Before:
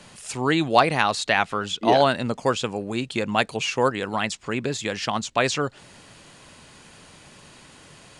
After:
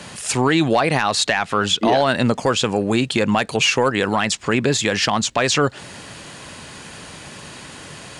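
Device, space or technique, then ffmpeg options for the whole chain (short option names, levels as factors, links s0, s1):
mastering chain: -af "highpass=44,equalizer=f=1700:t=o:w=0.24:g=2.5,acompressor=threshold=0.0794:ratio=2.5,asoftclip=type=tanh:threshold=0.251,alimiter=level_in=7.5:limit=0.891:release=50:level=0:latency=1,volume=0.473"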